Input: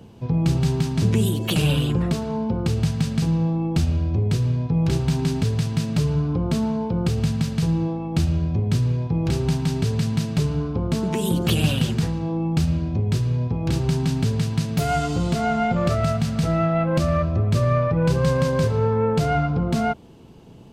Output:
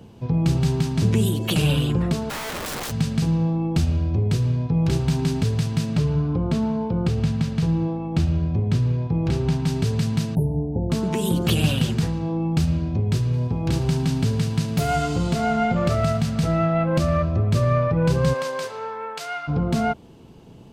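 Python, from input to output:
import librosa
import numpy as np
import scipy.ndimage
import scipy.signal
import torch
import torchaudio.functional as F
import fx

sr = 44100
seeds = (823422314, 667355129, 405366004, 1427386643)

y = fx.overflow_wrap(x, sr, gain_db=25.0, at=(2.29, 2.9), fade=0.02)
y = fx.lowpass(y, sr, hz=3900.0, slope=6, at=(5.96, 9.66))
y = fx.brickwall_bandstop(y, sr, low_hz=1000.0, high_hz=9200.0, at=(10.35, 10.9))
y = fx.echo_thinned(y, sr, ms=73, feedback_pct=60, hz=420.0, wet_db=-14, at=(13.32, 16.2), fade=0.02)
y = fx.highpass(y, sr, hz=fx.line((18.33, 510.0), (19.47, 1400.0)), slope=12, at=(18.33, 19.47), fade=0.02)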